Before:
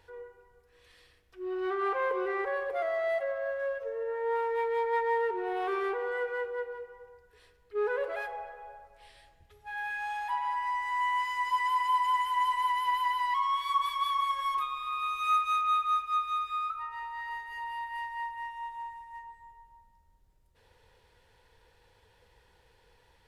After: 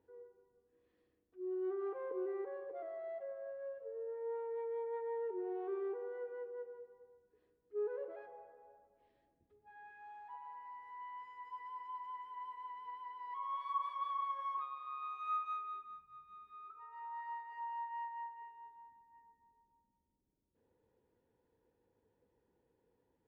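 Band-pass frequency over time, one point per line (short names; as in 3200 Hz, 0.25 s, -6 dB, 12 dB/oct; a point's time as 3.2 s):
band-pass, Q 2.6
13.15 s 280 Hz
13.6 s 680 Hz
15.51 s 680 Hz
16.1 s 130 Hz
17.13 s 730 Hz
18.07 s 730 Hz
18.88 s 270 Hz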